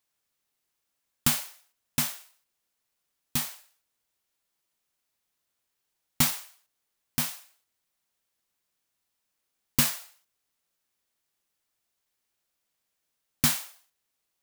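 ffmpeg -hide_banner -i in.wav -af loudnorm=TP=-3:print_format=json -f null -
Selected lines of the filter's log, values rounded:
"input_i" : "-27.6",
"input_tp" : "-6.1",
"input_lra" : "4.3",
"input_thresh" : "-39.3",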